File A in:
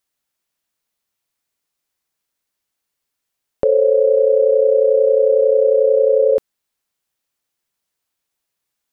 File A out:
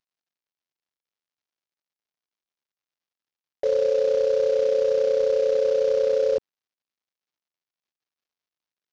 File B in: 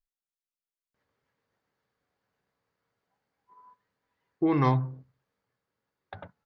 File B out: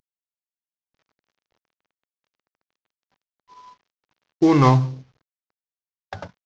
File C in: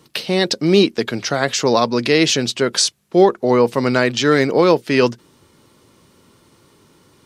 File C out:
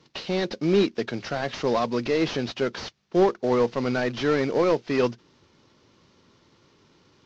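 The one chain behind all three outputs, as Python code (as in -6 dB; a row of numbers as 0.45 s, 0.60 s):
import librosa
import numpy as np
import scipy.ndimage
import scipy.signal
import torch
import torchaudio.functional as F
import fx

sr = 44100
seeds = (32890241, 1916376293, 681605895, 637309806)

y = fx.cvsd(x, sr, bps=32000)
y = y * 10.0 ** (-26 / 20.0) / np.sqrt(np.mean(np.square(y)))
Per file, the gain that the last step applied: -7.5 dB, +9.5 dB, -6.5 dB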